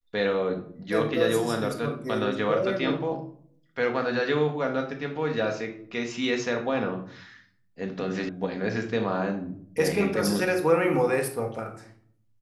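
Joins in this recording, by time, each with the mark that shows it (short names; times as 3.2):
8.29 sound cut off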